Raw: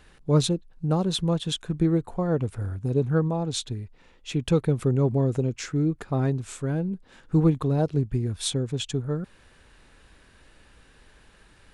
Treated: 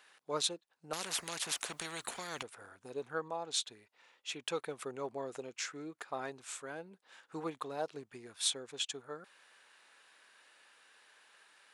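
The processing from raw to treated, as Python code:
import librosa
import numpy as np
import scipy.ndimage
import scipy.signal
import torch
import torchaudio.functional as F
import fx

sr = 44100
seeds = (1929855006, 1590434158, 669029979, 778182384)

y = scipy.signal.sosfilt(scipy.signal.butter(2, 790.0, 'highpass', fs=sr, output='sos'), x)
y = fx.spectral_comp(y, sr, ratio=4.0, at=(0.93, 2.43))
y = y * 10.0 ** (-3.5 / 20.0)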